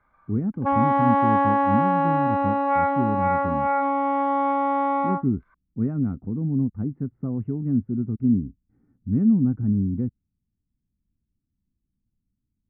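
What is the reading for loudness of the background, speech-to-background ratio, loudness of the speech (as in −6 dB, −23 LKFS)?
−22.5 LKFS, −3.5 dB, −26.0 LKFS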